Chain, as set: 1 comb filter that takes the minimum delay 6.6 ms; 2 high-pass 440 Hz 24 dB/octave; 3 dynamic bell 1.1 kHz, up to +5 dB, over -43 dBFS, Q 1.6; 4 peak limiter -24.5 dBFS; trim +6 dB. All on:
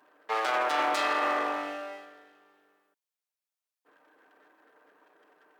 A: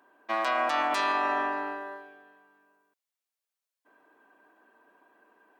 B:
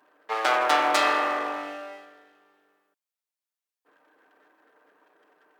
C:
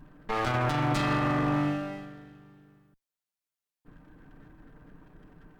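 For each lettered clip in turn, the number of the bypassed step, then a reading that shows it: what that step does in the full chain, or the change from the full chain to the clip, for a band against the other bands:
1, 8 kHz band -3.5 dB; 4, mean gain reduction 2.0 dB; 2, 250 Hz band +15.0 dB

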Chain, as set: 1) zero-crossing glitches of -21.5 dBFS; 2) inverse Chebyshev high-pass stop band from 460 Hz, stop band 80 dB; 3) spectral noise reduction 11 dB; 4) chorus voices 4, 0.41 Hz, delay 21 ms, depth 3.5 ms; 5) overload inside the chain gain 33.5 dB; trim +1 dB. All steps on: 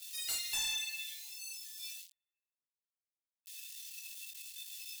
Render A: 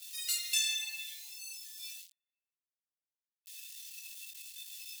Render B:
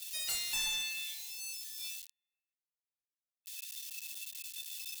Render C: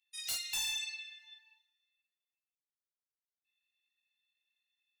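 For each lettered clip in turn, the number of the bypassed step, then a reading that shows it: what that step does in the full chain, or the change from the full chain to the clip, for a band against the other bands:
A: 5, distortion -8 dB; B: 4, crest factor change -2.0 dB; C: 1, distortion -5 dB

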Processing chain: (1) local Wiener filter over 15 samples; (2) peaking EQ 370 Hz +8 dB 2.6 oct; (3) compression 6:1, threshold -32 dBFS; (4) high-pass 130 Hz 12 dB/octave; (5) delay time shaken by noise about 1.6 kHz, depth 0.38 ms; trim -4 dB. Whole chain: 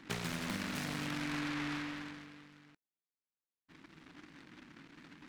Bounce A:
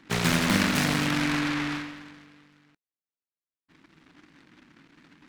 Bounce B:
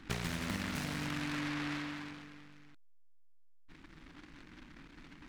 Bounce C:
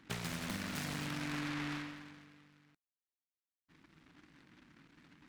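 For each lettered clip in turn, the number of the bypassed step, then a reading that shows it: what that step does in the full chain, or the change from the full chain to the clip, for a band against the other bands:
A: 3, mean gain reduction 5.0 dB; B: 4, 125 Hz band +2.5 dB; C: 2, crest factor change +1.5 dB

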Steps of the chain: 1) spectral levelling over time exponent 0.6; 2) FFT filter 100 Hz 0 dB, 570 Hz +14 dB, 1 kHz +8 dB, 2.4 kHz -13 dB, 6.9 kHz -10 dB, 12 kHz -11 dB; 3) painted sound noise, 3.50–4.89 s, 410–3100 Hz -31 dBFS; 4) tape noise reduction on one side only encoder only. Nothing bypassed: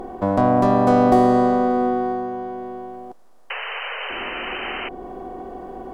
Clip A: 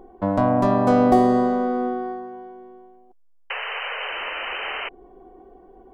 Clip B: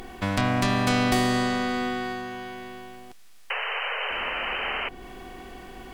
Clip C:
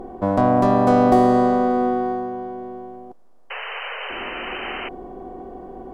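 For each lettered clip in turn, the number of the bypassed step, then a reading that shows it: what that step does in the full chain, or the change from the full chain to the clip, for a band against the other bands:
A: 1, 4 kHz band +2.0 dB; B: 2, loudness change -6.5 LU; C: 4, 4 kHz band -2.0 dB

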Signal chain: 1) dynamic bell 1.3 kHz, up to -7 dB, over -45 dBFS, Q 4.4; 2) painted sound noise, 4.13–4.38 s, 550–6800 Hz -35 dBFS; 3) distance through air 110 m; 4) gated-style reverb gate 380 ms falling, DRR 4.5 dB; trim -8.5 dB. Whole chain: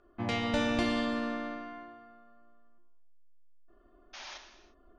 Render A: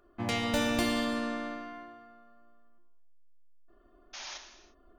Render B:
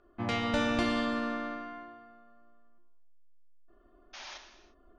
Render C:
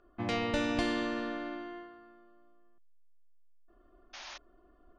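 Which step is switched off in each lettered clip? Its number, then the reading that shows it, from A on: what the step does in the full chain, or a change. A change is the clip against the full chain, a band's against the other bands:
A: 3, 8 kHz band +8.0 dB; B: 1, 1 kHz band +2.0 dB; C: 4, loudness change -2.0 LU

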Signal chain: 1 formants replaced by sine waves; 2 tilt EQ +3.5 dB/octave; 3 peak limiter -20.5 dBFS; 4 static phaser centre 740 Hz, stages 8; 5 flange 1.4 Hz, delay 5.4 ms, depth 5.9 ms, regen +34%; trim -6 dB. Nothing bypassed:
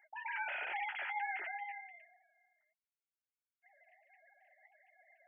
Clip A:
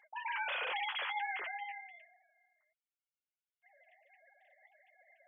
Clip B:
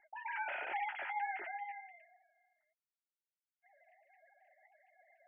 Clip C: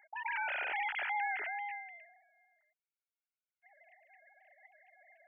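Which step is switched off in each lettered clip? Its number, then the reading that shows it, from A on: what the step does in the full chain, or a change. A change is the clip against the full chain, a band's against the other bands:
4, momentary loudness spread change -1 LU; 2, momentary loudness spread change -2 LU; 5, loudness change +3.5 LU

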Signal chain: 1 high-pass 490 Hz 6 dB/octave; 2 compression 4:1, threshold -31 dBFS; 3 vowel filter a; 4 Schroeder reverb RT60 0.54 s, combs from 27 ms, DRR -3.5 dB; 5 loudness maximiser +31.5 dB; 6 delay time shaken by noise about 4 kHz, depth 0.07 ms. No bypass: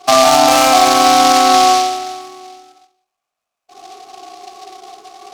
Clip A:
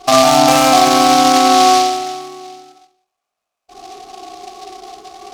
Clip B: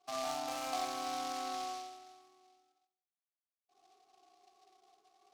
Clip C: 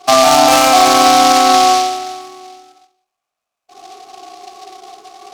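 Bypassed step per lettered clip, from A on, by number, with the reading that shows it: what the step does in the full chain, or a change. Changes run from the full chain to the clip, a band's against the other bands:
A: 1, 250 Hz band +4.5 dB; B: 5, crest factor change +4.5 dB; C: 2, mean gain reduction 3.0 dB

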